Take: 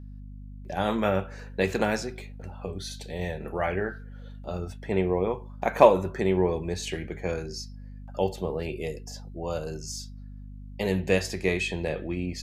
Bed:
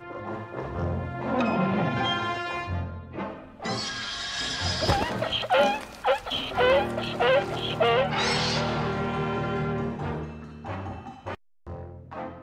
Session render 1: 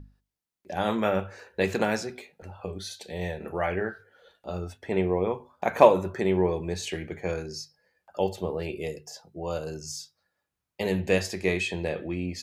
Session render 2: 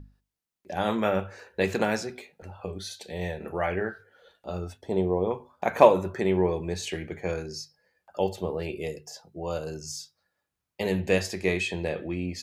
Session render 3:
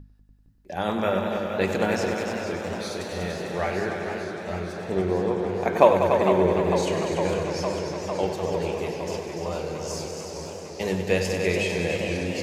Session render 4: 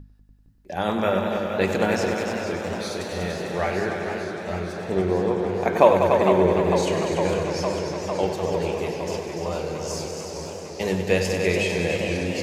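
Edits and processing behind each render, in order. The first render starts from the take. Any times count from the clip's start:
notches 50/100/150/200/250 Hz
4.81–5.31 band shelf 1900 Hz -13.5 dB 1.3 oct
multi-head echo 97 ms, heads all three, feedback 61%, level -10 dB; warbling echo 0.455 s, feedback 79%, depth 155 cents, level -9 dB
gain +2 dB; limiter -2 dBFS, peak gain reduction 2 dB

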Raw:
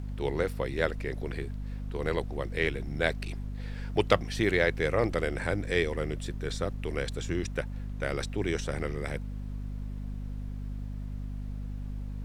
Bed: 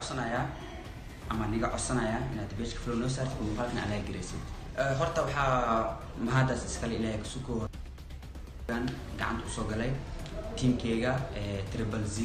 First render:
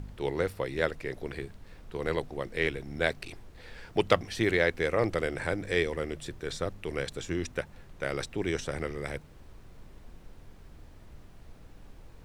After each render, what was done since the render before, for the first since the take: de-hum 50 Hz, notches 5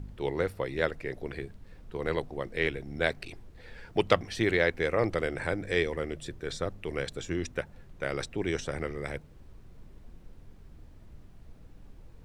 denoiser 6 dB, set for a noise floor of -52 dBFS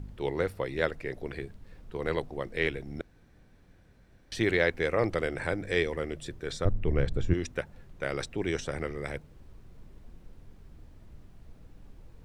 3.01–4.32 room tone; 6.65–7.34 RIAA curve playback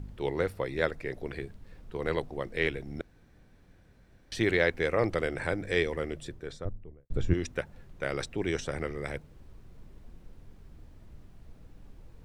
0.6–1.03 notch 2900 Hz, Q 11; 6.05–7.1 studio fade out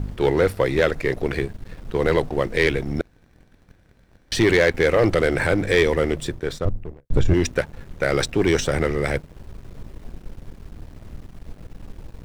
in parallel at +0.5 dB: limiter -19 dBFS, peak gain reduction 9 dB; on the sum: sample leveller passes 2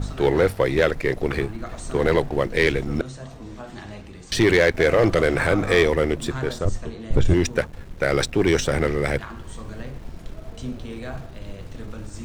add bed -5 dB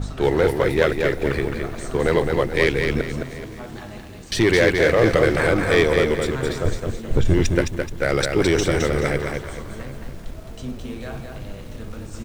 echo 0.754 s -20.5 dB; lo-fi delay 0.214 s, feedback 35%, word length 8-bit, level -4.5 dB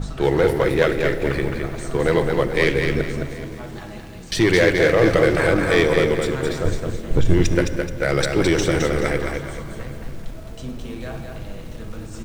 shoebox room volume 2800 m³, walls mixed, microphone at 0.66 m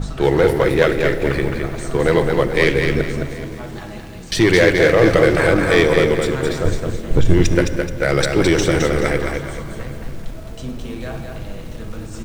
gain +3 dB; limiter -1 dBFS, peak gain reduction 0.5 dB

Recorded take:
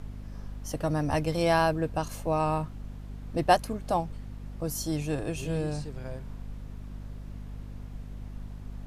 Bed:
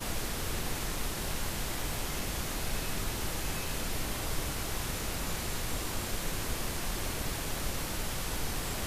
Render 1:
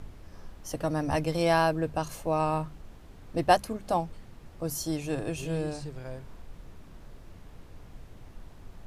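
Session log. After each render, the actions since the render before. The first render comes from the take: notches 50/100/150/200/250 Hz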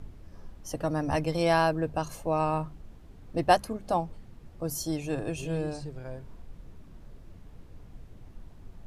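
denoiser 6 dB, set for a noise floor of -50 dBFS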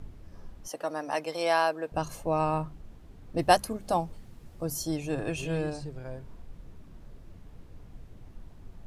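0.68–1.92 HPF 470 Hz; 3.39–4.65 high shelf 4700 Hz +8 dB; 5.19–5.7 bell 2000 Hz +5.5 dB 2.2 oct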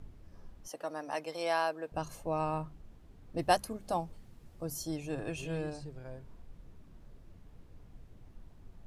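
gain -6 dB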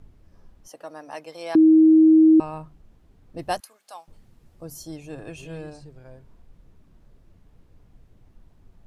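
1.55–2.4 bleep 317 Hz -10 dBFS; 3.6–4.08 HPF 1200 Hz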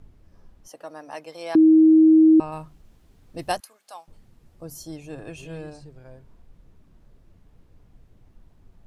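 2.52–3.52 high shelf 2500 Hz +8.5 dB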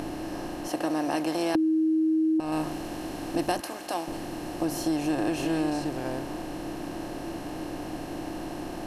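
per-bin compression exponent 0.4; compressor 12:1, threshold -22 dBFS, peak gain reduction 11 dB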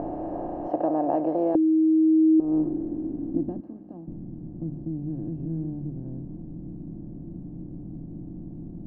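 low-pass sweep 690 Hz -> 180 Hz, 1–4.19

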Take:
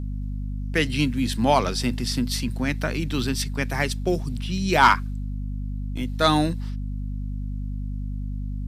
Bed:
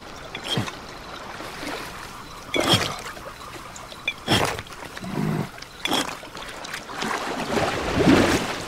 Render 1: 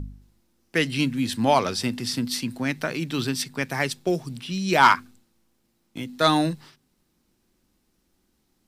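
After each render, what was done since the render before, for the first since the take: de-hum 50 Hz, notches 5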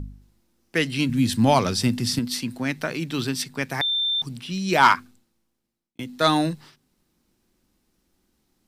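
1.09–2.19 tone controls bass +9 dB, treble +4 dB; 3.81–4.22 bleep 3570 Hz -20.5 dBFS; 4.92–5.99 fade out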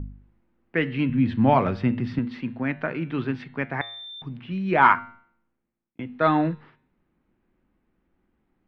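LPF 2300 Hz 24 dB/oct; de-hum 115.9 Hz, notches 37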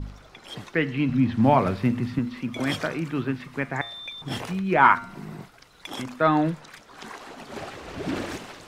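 add bed -13.5 dB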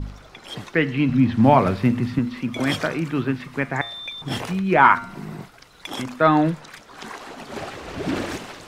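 gain +4 dB; limiter -2 dBFS, peak gain reduction 2 dB

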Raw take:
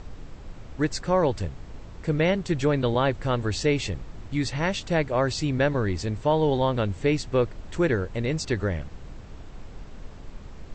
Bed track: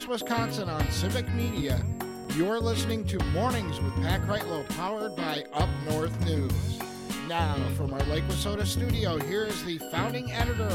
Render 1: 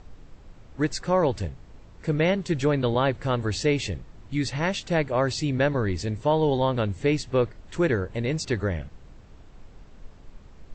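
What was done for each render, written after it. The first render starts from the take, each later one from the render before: noise print and reduce 7 dB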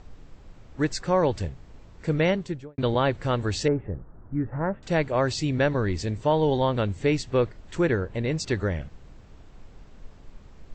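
2.27–2.78 studio fade out; 3.68–4.83 elliptic low-pass 1500 Hz, stop band 70 dB; 7.81–8.4 high shelf 6900 Hz -10 dB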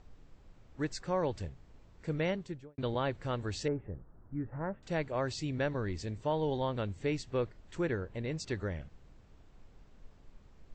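gain -10 dB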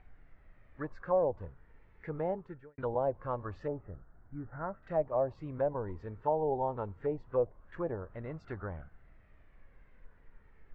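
flange 0.23 Hz, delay 1.3 ms, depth 1.1 ms, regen +59%; envelope low-pass 710–2200 Hz down, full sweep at -32 dBFS

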